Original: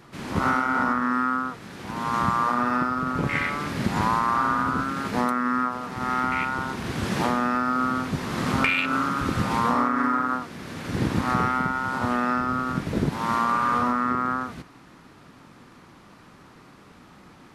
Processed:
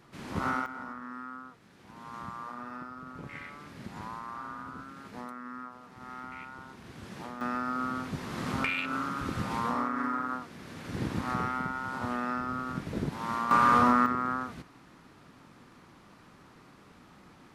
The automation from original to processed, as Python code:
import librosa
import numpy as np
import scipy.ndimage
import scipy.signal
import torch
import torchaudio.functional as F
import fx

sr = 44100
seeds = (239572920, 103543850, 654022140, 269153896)

y = fx.gain(x, sr, db=fx.steps((0.0, -8.0), (0.66, -18.0), (7.41, -8.5), (13.51, 1.0), (14.06, -5.5)))